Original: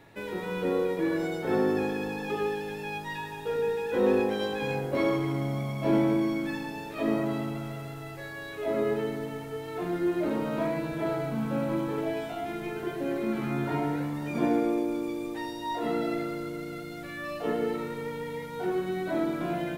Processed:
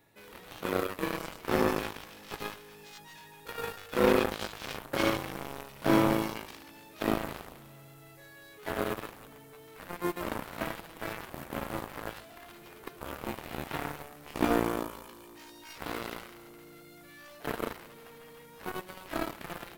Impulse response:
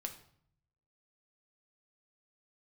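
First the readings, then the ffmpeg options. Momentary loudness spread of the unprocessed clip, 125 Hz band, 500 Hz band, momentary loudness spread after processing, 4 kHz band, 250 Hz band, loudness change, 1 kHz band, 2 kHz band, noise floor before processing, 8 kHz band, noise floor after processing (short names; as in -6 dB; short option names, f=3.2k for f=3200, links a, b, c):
10 LU, -6.5 dB, -5.5 dB, 23 LU, +1.5 dB, -6.0 dB, -3.0 dB, -1.5 dB, -1.0 dB, -40 dBFS, +4.5 dB, -53 dBFS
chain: -af "aeval=exprs='0.251*(cos(1*acos(clip(val(0)/0.251,-1,1)))-cos(1*PI/2))+0.0447*(cos(7*acos(clip(val(0)/0.251,-1,1)))-cos(7*PI/2))':c=same,aemphasis=mode=production:type=50kf"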